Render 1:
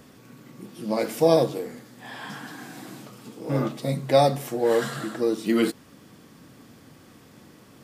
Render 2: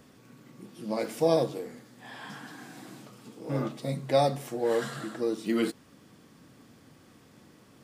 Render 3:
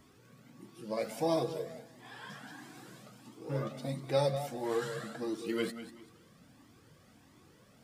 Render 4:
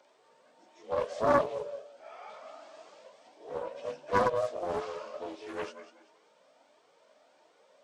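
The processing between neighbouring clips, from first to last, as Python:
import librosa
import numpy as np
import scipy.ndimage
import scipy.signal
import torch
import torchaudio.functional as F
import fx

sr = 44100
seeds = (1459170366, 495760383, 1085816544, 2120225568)

y1 = fx.peak_eq(x, sr, hz=13000.0, db=-6.0, octaves=0.23)
y1 = y1 * librosa.db_to_amplitude(-5.5)
y2 = fx.echo_feedback(y1, sr, ms=193, feedback_pct=31, wet_db=-12)
y2 = fx.comb_cascade(y2, sr, direction='rising', hz=1.5)
y3 = fx.partial_stretch(y2, sr, pct=86)
y3 = fx.highpass_res(y3, sr, hz=590.0, q=4.9)
y3 = fx.doppler_dist(y3, sr, depth_ms=0.61)
y3 = y3 * librosa.db_to_amplitude(-1.0)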